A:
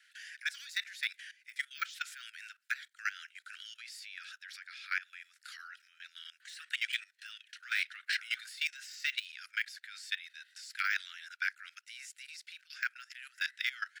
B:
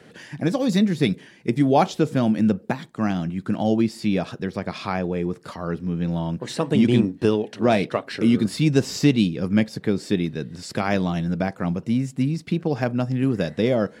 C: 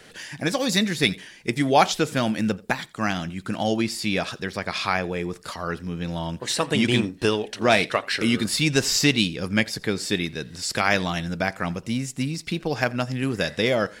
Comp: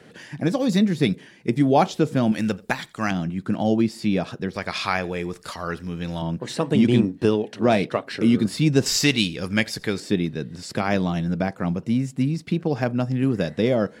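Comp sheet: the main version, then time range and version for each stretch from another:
B
2.32–3.11 s: from C
4.56–6.22 s: from C
8.86–10.00 s: from C
not used: A

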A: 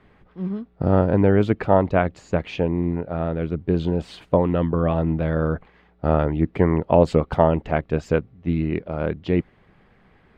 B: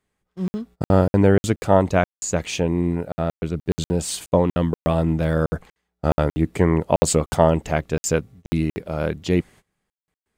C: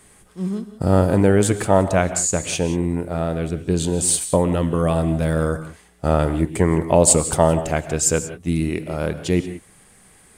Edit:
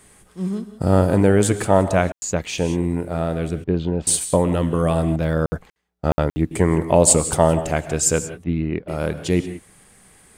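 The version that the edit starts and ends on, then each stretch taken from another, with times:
C
2.12–2.58 s: from B
3.64–4.07 s: from A
5.16–6.51 s: from B
8.44–8.88 s: from A

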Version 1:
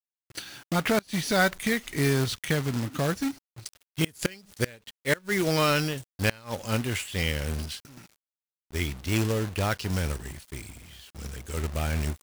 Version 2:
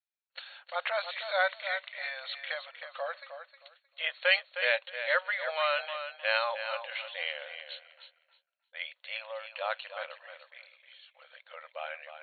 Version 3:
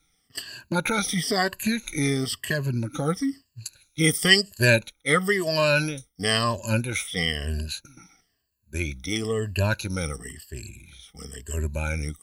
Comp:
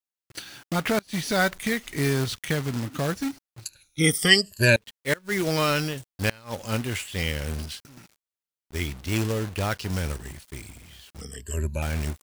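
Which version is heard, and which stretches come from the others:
1
3.65–4.76 s: from 3
11.21–11.82 s: from 3
not used: 2

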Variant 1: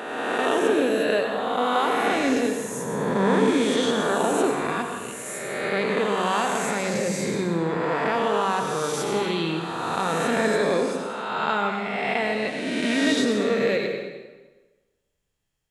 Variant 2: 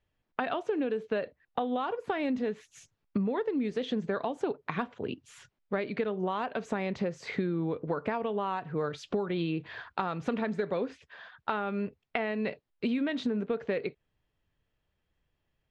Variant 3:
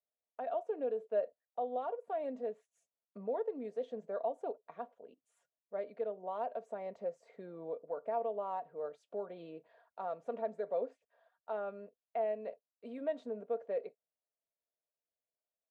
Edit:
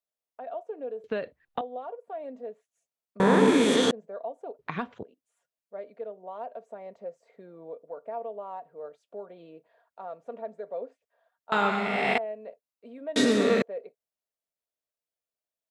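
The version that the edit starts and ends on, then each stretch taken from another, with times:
3
1.04–1.61 s: from 2
3.20–3.91 s: from 1
4.59–5.03 s: from 2
11.52–12.18 s: from 1
13.16–13.62 s: from 1

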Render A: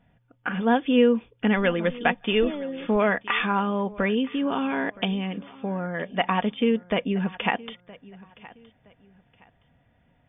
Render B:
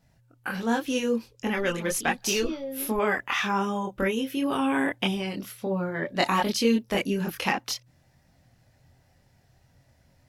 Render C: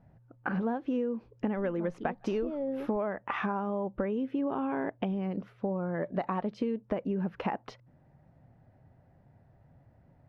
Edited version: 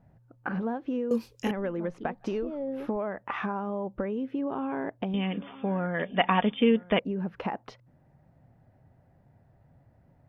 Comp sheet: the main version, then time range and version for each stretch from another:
C
1.11–1.51 s: from B
5.14–6.99 s: from A

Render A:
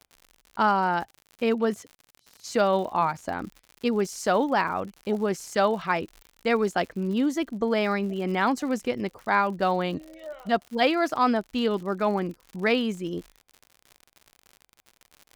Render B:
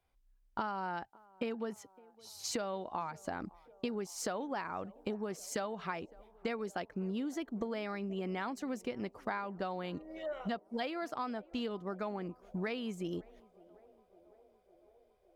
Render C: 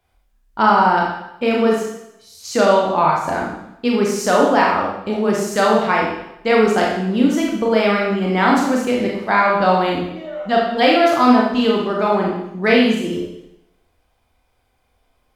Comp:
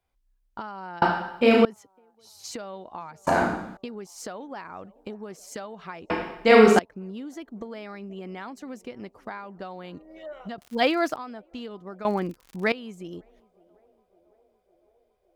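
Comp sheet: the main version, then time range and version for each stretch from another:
B
1.02–1.65 s: from C
3.27–3.77 s: from C
6.10–6.79 s: from C
10.58–11.16 s: from A
12.05–12.72 s: from A

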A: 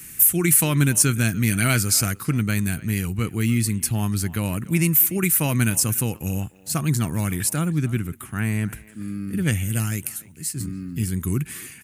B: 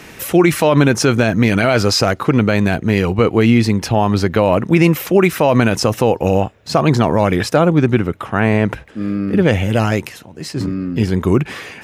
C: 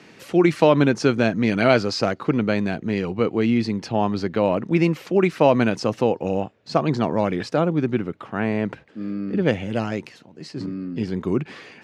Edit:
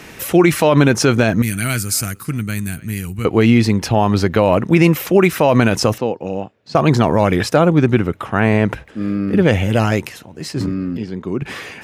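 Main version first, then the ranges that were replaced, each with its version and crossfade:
B
1.42–3.25 s: from A
5.98–6.75 s: from C
10.97–11.42 s: from C

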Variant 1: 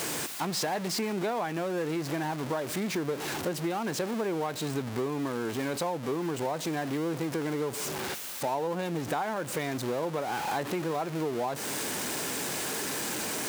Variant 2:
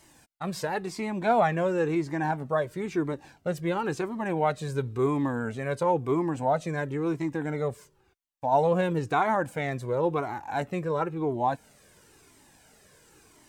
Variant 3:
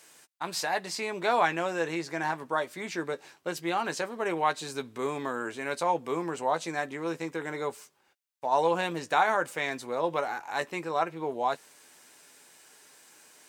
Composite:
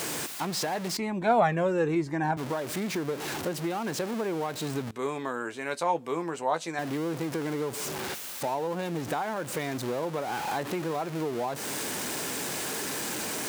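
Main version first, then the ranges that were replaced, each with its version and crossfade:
1
0.97–2.37 s: from 2
4.91–6.79 s: from 3

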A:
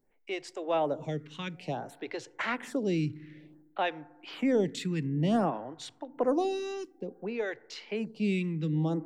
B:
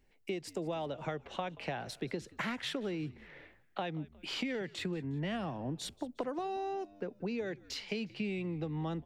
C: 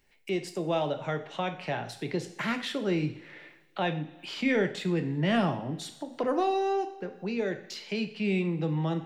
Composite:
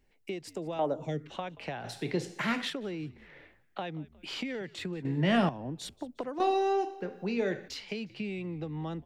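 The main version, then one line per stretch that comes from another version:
B
0.79–1.30 s: from A
1.84–2.70 s: from C
5.05–5.49 s: from C
6.40–7.68 s: from C

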